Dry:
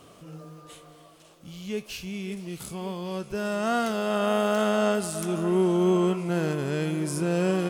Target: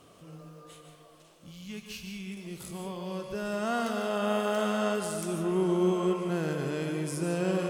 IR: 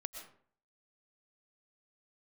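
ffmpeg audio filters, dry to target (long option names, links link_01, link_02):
-filter_complex "[0:a]asettb=1/sr,asplit=3[link_01][link_02][link_03];[link_01]atrim=end=1.514[link_04];[link_02]atrim=start=1.51:end=2.37,asetpts=PTS-STARTPTS,afade=type=in:duration=0.004:curve=qsin,afade=type=out:start_time=0.856:duration=0.004:curve=qsin,equalizer=frequency=480:width=1.5:gain=-13.5[link_05];[link_03]atrim=start=2.366[link_06];[link_04][link_05]acrossfade=duration=0.004:curve1=hsin:curve2=qsin[link_07];[link_07][link_06]acrossfade=duration=0.004:curve1=qsin:curve2=hsin[link_08];[1:a]atrim=start_sample=2205,asetrate=36603,aresample=44100[link_09];[link_08][link_09]afir=irnorm=-1:irlink=0,volume=-2.5dB"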